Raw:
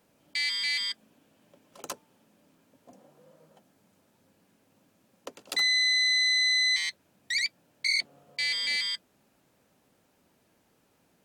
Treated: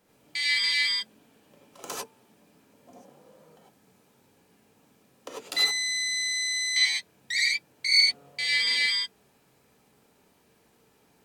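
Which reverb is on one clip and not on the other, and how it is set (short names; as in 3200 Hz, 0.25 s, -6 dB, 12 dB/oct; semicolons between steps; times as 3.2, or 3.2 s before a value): non-linear reverb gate 0.12 s rising, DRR -4.5 dB; gain -1 dB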